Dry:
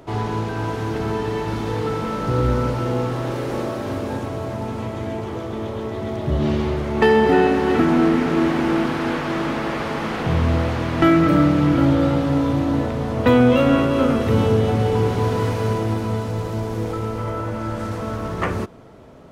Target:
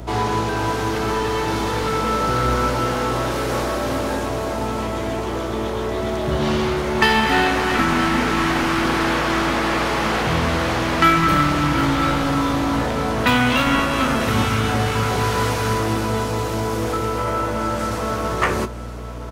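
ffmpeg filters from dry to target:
-filter_complex "[0:a]bass=f=250:g=-10,treble=f=4k:g=5,aeval=exprs='val(0)+0.0158*(sin(2*PI*60*n/s)+sin(2*PI*2*60*n/s)/2+sin(2*PI*3*60*n/s)/3+sin(2*PI*4*60*n/s)/4+sin(2*PI*5*60*n/s)/5)':c=same,acrossover=split=260|800[a][b][c];[a]highpass=54[d];[b]aeval=exprs='0.0398*(abs(mod(val(0)/0.0398+3,4)-2)-1)':c=same[e];[d][e][c]amix=inputs=3:normalize=0,asplit=2[f][g];[g]adelay=19,volume=-12dB[h];[f][h]amix=inputs=2:normalize=0,aecho=1:1:969|1938|2907|3876|4845|5814:0.158|0.0935|0.0552|0.0326|0.0192|0.0113,volume=6dB"

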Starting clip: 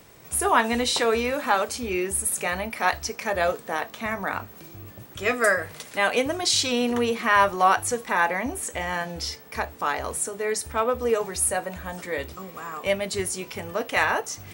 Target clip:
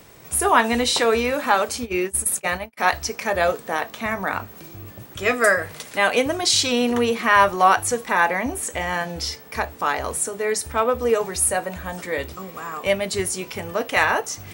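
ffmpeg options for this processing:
-filter_complex "[0:a]asplit=3[a][b][c];[a]afade=t=out:st=1.84:d=0.02[d];[b]agate=range=-41dB:threshold=-27dB:ratio=16:detection=peak,afade=t=in:st=1.84:d=0.02,afade=t=out:st=2.77:d=0.02[e];[c]afade=t=in:st=2.77:d=0.02[f];[d][e][f]amix=inputs=3:normalize=0,volume=3.5dB"

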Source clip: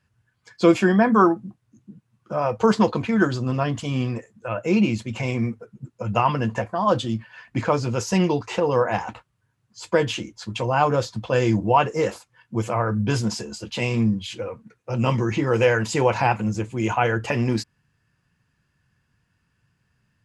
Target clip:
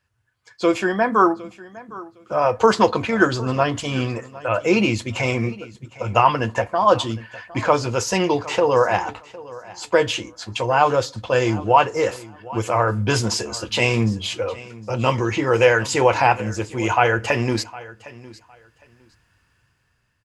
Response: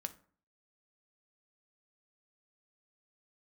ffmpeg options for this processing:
-filter_complex "[0:a]equalizer=f=180:t=o:w=0.98:g=-13,dynaudnorm=f=320:g=7:m=11.5dB,aecho=1:1:759|1518:0.106|0.0212,asplit=2[a][b];[1:a]atrim=start_sample=2205[c];[b][c]afir=irnorm=-1:irlink=0,volume=-5dB[d];[a][d]amix=inputs=2:normalize=0,volume=-3.5dB"

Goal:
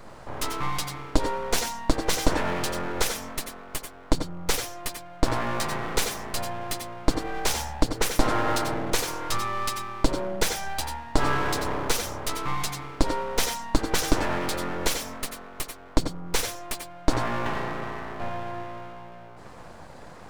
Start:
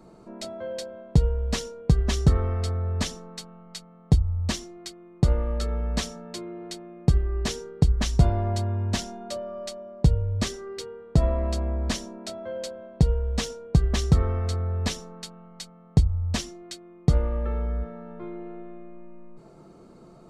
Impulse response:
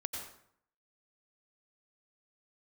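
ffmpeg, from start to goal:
-filter_complex "[0:a]highpass=200,asplit=2[a][b];[b]alimiter=limit=-23.5dB:level=0:latency=1:release=212,volume=-3dB[c];[a][c]amix=inputs=2:normalize=0,aeval=exprs='abs(val(0))':c=same[d];[1:a]atrim=start_sample=2205,atrim=end_sample=4410[e];[d][e]afir=irnorm=-1:irlink=0,volume=7dB"

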